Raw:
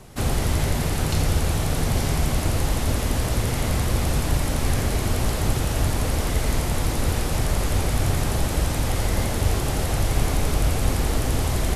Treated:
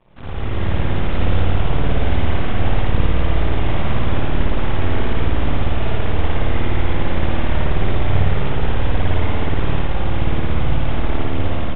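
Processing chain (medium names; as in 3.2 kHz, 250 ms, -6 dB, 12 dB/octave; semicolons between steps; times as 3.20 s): level rider gain up to 9.5 dB; half-wave rectifier; spring tank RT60 1.8 s, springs 54 ms, chirp 35 ms, DRR -7.5 dB; resampled via 8 kHz; trim -8.5 dB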